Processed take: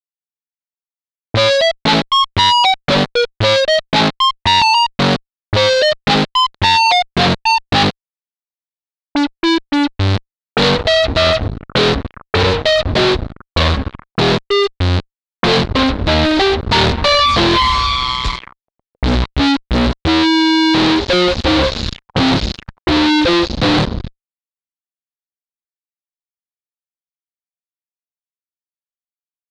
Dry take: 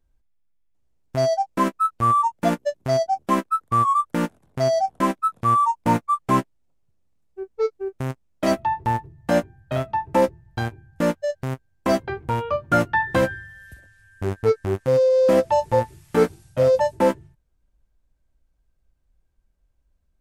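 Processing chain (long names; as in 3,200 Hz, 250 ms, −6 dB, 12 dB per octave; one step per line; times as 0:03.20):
gliding playback speed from 86% → 51%
fuzz pedal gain 47 dB, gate −45 dBFS
envelope-controlled low-pass 480–4,000 Hz up, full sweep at −18 dBFS
level +1 dB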